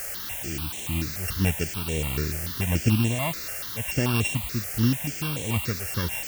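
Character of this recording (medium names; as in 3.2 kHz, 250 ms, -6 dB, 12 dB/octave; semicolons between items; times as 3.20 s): a buzz of ramps at a fixed pitch in blocks of 16 samples; tremolo triangle 1.5 Hz, depth 70%; a quantiser's noise floor 6-bit, dither triangular; notches that jump at a steady rate 6.9 Hz 1–4.8 kHz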